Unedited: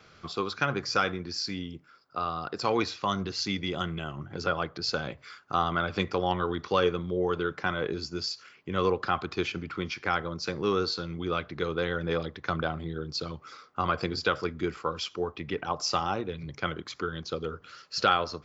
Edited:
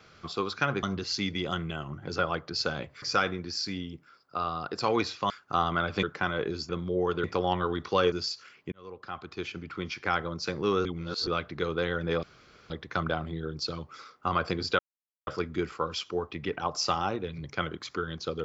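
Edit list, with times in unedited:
3.11–5.3 move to 0.83
6.03–6.91 swap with 7.46–8.12
8.72–10.13 fade in
10.85–11.27 reverse
12.23 insert room tone 0.47 s
14.32 insert silence 0.48 s

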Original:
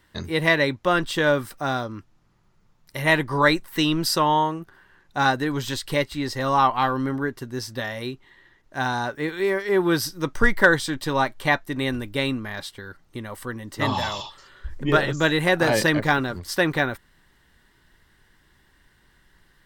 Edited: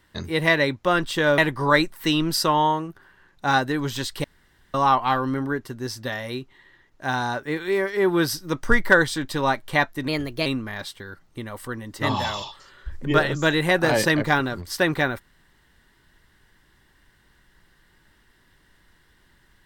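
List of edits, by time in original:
1.38–3.1 cut
5.96–6.46 room tone
11.8–12.24 speed 116%

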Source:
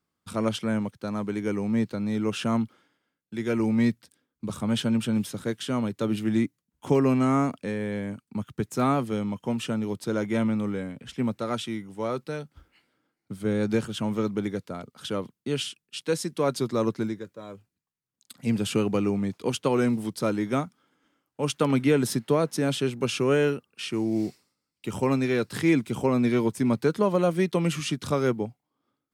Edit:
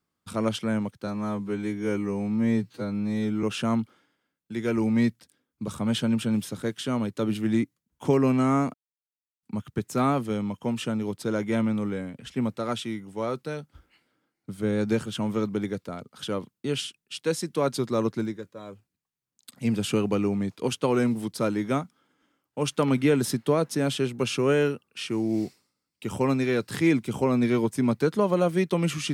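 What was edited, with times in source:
1.07–2.25 stretch 2×
7.56–8.25 mute

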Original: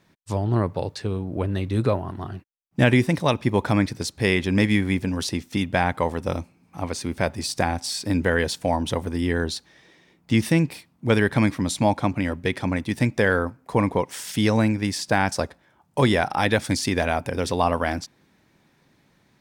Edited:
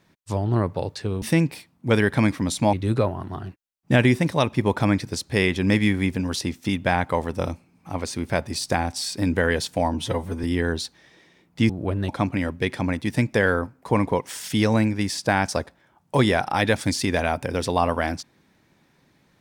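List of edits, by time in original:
1.22–1.61 swap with 10.41–11.92
8.82–9.15 stretch 1.5×

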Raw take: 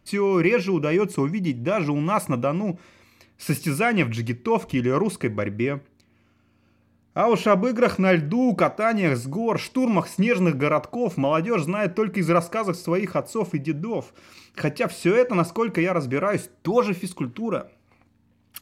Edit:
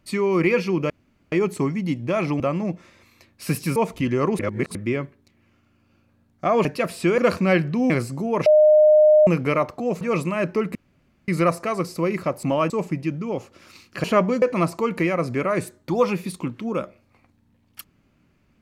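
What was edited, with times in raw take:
0.9 insert room tone 0.42 s
1.98–2.4 cut
3.76–4.49 cut
5.12–5.48 reverse
7.38–7.76 swap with 14.66–15.19
8.48–9.05 cut
9.61–10.42 bleep 611 Hz -10 dBFS
11.16–11.43 move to 13.32
12.17 insert room tone 0.53 s

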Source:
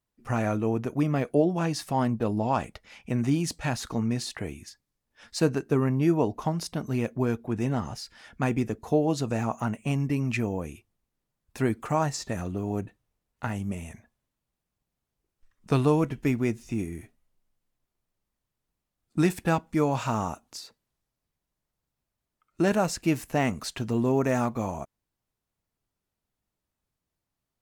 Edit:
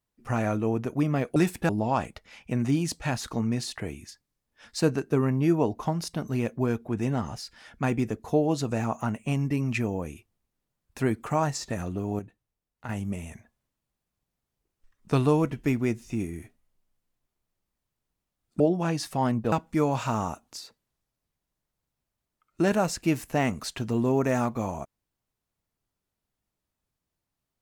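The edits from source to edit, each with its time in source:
1.36–2.28 swap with 19.19–19.52
12.78–13.48 gain -7.5 dB

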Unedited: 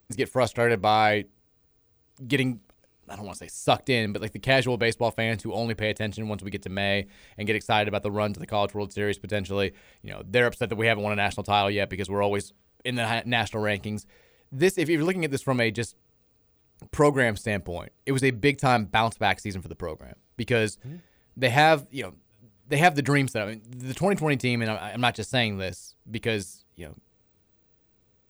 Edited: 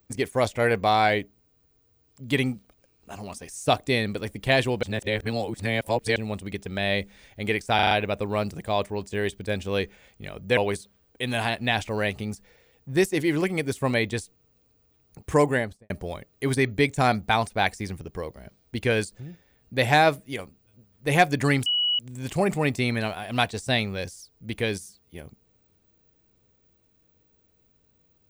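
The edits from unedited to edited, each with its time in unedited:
4.83–6.16 reverse
7.75 stutter 0.04 s, 5 plays
10.41–12.22 cut
17.11–17.55 studio fade out
23.31–23.64 bleep 2930 Hz -20.5 dBFS

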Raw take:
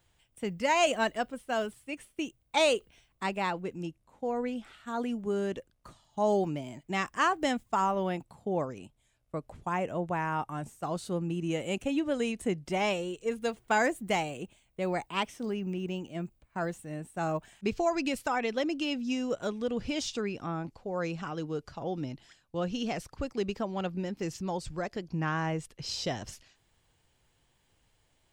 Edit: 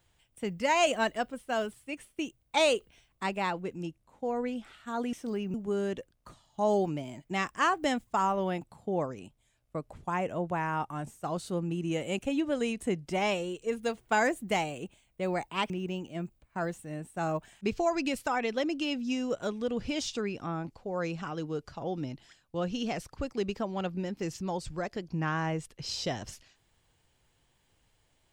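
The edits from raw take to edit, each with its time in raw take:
15.29–15.7 move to 5.13

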